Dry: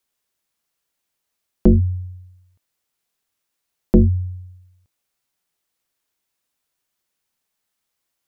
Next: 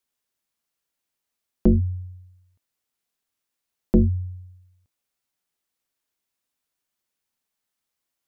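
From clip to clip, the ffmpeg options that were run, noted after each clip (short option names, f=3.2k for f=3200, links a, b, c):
-af "equalizer=f=250:t=o:w=0.26:g=3.5,volume=-5dB"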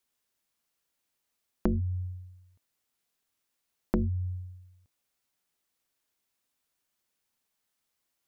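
-af "acompressor=threshold=-27dB:ratio=6,volume=1.5dB"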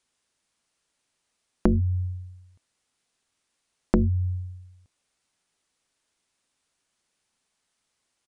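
-af "aresample=22050,aresample=44100,volume=6.5dB"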